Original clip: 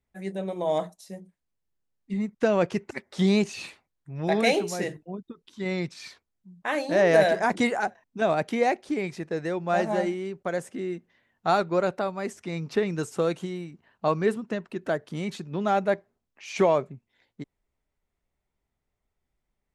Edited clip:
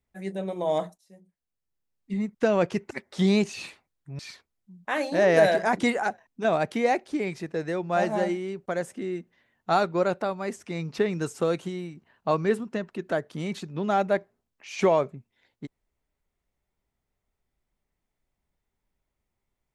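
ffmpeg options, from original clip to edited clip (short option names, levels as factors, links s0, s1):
-filter_complex "[0:a]asplit=3[s0][s1][s2];[s0]atrim=end=0.98,asetpts=PTS-STARTPTS,afade=t=out:st=0.976:d=0.004:c=hsin:silence=0.105925[s3];[s1]atrim=start=0.98:end=4.192,asetpts=PTS-STARTPTS,afade=t=in:d=1.15:silence=0.105925[s4];[s2]atrim=start=5.958[s5];[s3][s4]concat=n=2:v=0:a=1[s6];[s6][s5]acrossfade=d=0.004:c1=hsin:c2=hsin"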